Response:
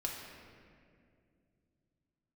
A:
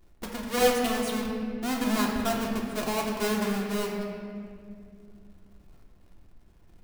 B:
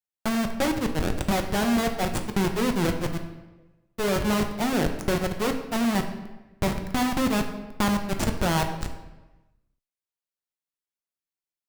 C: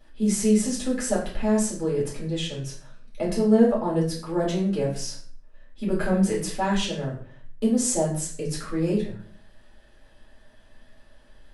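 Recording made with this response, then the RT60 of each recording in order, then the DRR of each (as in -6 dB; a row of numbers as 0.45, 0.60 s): A; 2.3, 1.1, 0.50 s; -2.0, 4.5, -6.0 dB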